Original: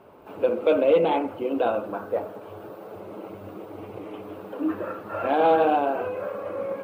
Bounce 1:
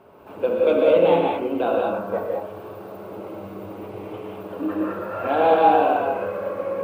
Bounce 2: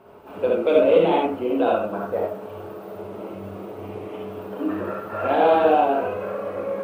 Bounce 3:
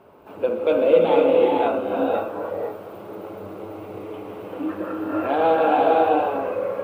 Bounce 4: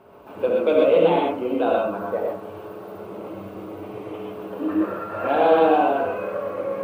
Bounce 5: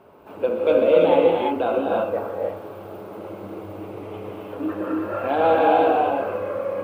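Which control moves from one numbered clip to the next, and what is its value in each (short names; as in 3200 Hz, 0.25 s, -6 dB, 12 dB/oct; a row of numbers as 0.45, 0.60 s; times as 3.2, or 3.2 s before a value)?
non-linear reverb, gate: 0.23, 0.1, 0.54, 0.15, 0.36 s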